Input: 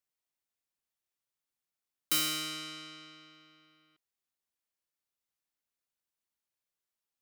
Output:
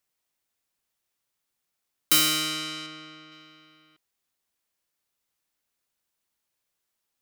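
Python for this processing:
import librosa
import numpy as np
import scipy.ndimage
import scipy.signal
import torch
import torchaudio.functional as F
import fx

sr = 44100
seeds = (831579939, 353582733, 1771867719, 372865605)

y = fx.high_shelf(x, sr, hz=3500.0, db=-7.0, at=(2.86, 3.32))
y = y * librosa.db_to_amplitude(9.0)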